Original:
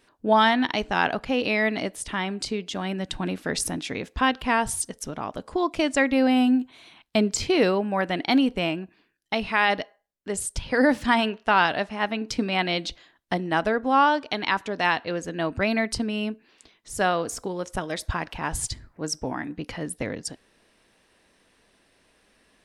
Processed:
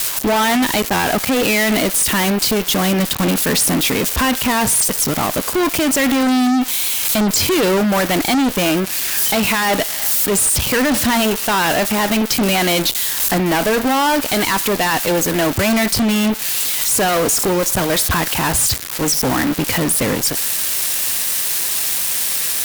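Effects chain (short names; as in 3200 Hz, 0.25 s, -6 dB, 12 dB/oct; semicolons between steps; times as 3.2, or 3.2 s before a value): switching spikes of -19.5 dBFS; HPF 62 Hz 24 dB/oct; limiter -20 dBFS, peak gain reduction 12.5 dB; fuzz box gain 40 dB, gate -42 dBFS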